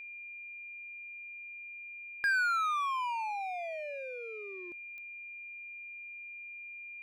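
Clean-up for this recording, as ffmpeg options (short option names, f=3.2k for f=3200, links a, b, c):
-af "adeclick=t=4,bandreject=f=2.4k:w=30"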